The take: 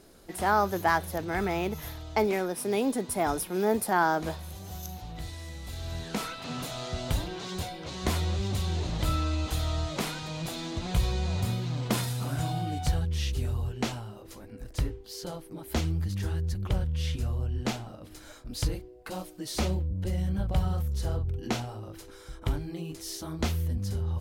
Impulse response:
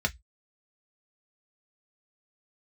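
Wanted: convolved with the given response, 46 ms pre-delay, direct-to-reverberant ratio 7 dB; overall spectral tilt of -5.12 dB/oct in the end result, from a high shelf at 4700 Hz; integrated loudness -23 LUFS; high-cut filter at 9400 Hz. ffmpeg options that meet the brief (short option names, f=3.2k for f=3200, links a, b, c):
-filter_complex "[0:a]lowpass=9.4k,highshelf=f=4.7k:g=7.5,asplit=2[a][b];[1:a]atrim=start_sample=2205,adelay=46[c];[b][c]afir=irnorm=-1:irlink=0,volume=-15.5dB[d];[a][d]amix=inputs=2:normalize=0,volume=5dB"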